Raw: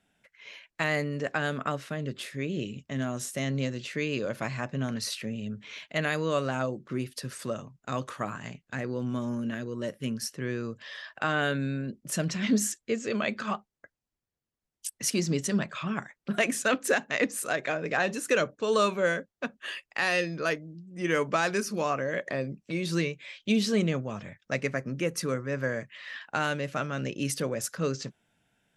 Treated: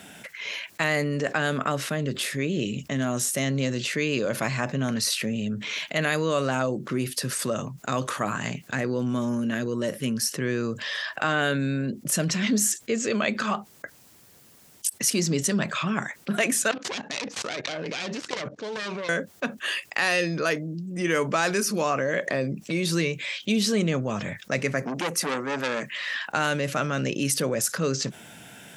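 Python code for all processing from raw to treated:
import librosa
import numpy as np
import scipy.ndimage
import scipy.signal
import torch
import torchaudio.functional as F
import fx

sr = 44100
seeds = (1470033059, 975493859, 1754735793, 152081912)

y = fx.chain(x, sr, fx.self_delay(depth_ms=0.48),
    fx.lowpass(hz=6000.0, slope=24),
    fx.level_steps(step_db=22), at=(16.71, 19.09))
y = fx.chain(y, sr, fx.highpass(hz=180.0, slope=24),
    fx.transformer_sat(knee_hz=2400.0), at=(24.82, 26.19))
y = scipy.signal.sosfilt(scipy.signal.butter(2, 110.0, 'highpass', fs=sr, output='sos'), y)
y = fx.high_shelf(y, sr, hz=6500.0, db=7.5)
y = fx.env_flatten(y, sr, amount_pct=50)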